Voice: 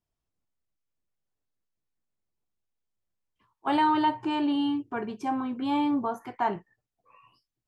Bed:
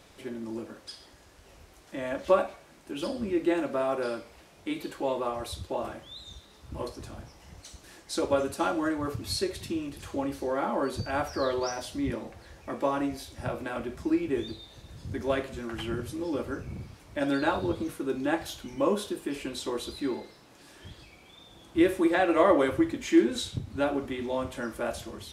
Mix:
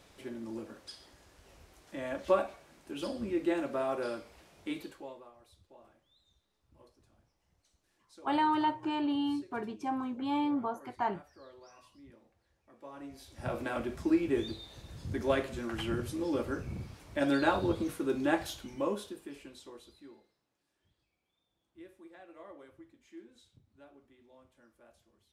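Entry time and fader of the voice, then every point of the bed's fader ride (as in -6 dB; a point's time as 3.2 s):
4.60 s, -5.0 dB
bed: 4.76 s -4.5 dB
5.32 s -25.5 dB
12.72 s -25.5 dB
13.56 s -1 dB
18.4 s -1 dB
20.63 s -29.5 dB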